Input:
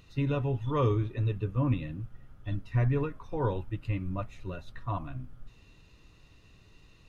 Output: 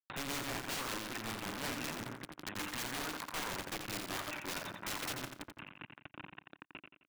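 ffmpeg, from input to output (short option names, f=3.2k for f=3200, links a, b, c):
-af "bandreject=f=60:t=h:w=6,bandreject=f=120:t=h:w=6,bandreject=f=180:t=h:w=6,bandreject=f=240:t=h:w=6,bandreject=f=300:t=h:w=6,bandreject=f=360:t=h:w=6,bandreject=f=420:t=h:w=6,bandreject=f=480:t=h:w=6,bandreject=f=540:t=h:w=6,bandreject=f=600:t=h:w=6,afftdn=nr=15:nf=-52,acompressor=threshold=-40dB:ratio=2.5,alimiter=level_in=12.5dB:limit=-24dB:level=0:latency=1:release=19,volume=-12.5dB,tremolo=f=5.3:d=0.7,crystalizer=i=7:c=0,aresample=8000,acrusher=bits=6:dc=4:mix=0:aa=0.000001,aresample=44100,highpass=200,equalizer=f=300:t=q:w=4:g=5,equalizer=f=460:t=q:w=4:g=-7,equalizer=f=1k:t=q:w=4:g=4,equalizer=f=1.5k:t=q:w=4:g=6,lowpass=f=2.5k:w=0.5412,lowpass=f=2.5k:w=1.3066,aeval=exprs='(mod(211*val(0)+1,2)-1)/211':c=same,aecho=1:1:87|174|261|348:0.447|0.13|0.0376|0.0109,acompressor=mode=upward:threshold=-58dB:ratio=2.5,volume=13.5dB"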